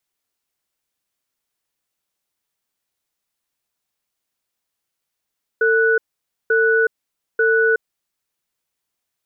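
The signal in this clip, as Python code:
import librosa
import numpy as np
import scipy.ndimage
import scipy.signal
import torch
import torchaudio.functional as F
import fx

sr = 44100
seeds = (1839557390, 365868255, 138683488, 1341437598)

y = fx.cadence(sr, length_s=2.33, low_hz=449.0, high_hz=1480.0, on_s=0.37, off_s=0.52, level_db=-15.5)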